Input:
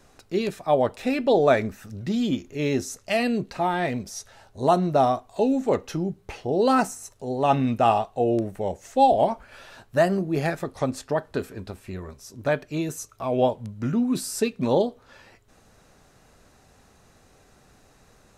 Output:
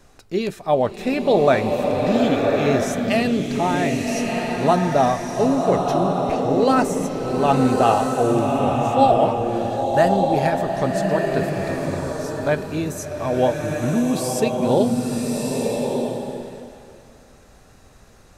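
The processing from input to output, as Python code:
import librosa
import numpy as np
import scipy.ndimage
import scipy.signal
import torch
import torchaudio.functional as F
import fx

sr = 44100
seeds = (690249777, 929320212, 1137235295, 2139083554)

y = fx.low_shelf(x, sr, hz=70.0, db=5.5)
y = fx.rev_bloom(y, sr, seeds[0], attack_ms=1240, drr_db=0.5)
y = F.gain(torch.from_numpy(y), 2.0).numpy()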